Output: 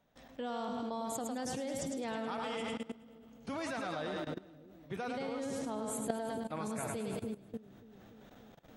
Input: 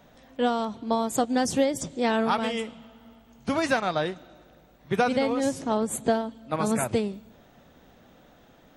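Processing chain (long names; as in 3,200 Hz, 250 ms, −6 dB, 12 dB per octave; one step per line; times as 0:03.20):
echo with a time of its own for lows and highs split 420 Hz, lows 292 ms, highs 106 ms, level −6.5 dB
output level in coarse steps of 18 dB
level −2 dB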